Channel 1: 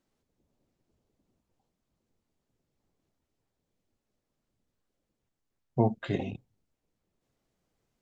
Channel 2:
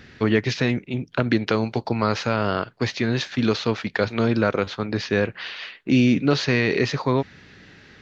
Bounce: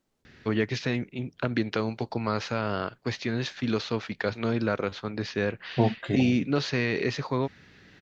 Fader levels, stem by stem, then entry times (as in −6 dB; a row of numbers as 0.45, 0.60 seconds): +2.0, −6.5 decibels; 0.00, 0.25 seconds